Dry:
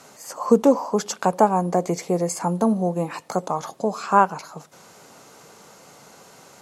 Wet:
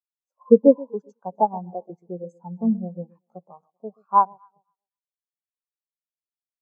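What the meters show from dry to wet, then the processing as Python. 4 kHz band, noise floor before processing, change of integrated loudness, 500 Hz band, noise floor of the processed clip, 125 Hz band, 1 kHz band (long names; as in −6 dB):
below −40 dB, −49 dBFS, +1.0 dB, −0.5 dB, below −85 dBFS, −8.5 dB, −2.5 dB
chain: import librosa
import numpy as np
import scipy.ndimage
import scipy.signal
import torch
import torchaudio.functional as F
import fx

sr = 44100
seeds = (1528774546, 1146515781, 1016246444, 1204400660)

y = fx.echo_alternate(x, sr, ms=128, hz=870.0, feedback_pct=63, wet_db=-8.5)
y = np.sign(y) * np.maximum(np.abs(y) - 10.0 ** (-46.5 / 20.0), 0.0)
y = fx.spectral_expand(y, sr, expansion=2.5)
y = y * 10.0 ** (1.5 / 20.0)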